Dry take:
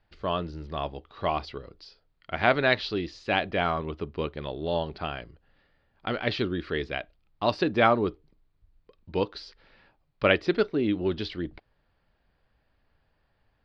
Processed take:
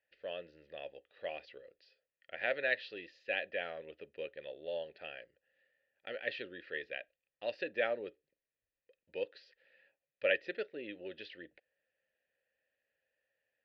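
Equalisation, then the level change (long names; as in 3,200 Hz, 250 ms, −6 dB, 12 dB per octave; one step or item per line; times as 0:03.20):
formant filter e
low-shelf EQ 360 Hz −6 dB
parametric band 480 Hz −6.5 dB 1.8 octaves
+4.0 dB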